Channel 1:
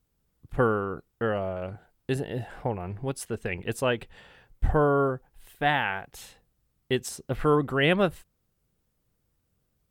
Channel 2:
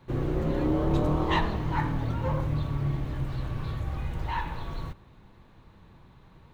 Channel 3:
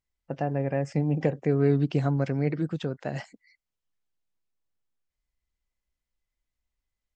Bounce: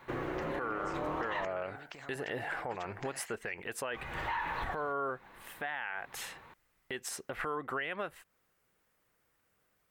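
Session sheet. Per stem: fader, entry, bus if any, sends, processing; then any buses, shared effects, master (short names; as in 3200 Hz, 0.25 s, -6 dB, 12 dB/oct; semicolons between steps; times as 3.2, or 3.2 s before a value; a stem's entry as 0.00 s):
-2.5 dB, 0.00 s, bus A, no send, dry
-3.5 dB, 0.00 s, muted 1.45–3.94, bus A, no send, dry
-13.0 dB, 0.00 s, no bus, no send, limiter -21.5 dBFS, peak gain reduction 11 dB; compressor, threshold -36 dBFS, peak gain reduction 10.5 dB; spectral compressor 2:1
bus A: 0.0 dB, low shelf 160 Hz -11.5 dB; compressor 12:1, threshold -37 dBFS, peak gain reduction 16 dB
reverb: off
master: EQ curve 180 Hz 0 dB, 1900 Hz +14 dB, 3800 Hz +4 dB; limiter -26 dBFS, peak gain reduction 9.5 dB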